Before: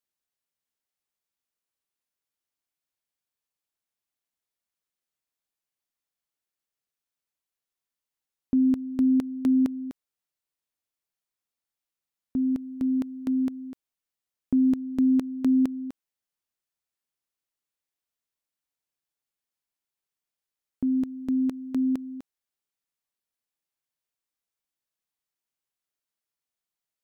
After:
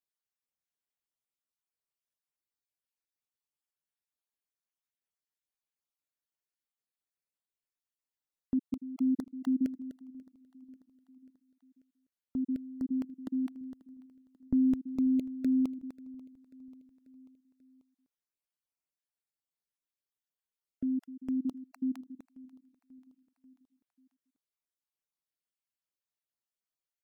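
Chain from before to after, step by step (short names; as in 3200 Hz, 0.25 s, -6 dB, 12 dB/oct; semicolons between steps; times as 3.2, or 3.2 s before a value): random spectral dropouts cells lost 29%; 13.61–14.96 low shelf 110 Hz +11 dB; on a send: feedback echo 0.539 s, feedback 59%, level -22 dB; on the sum: gain -6.5 dB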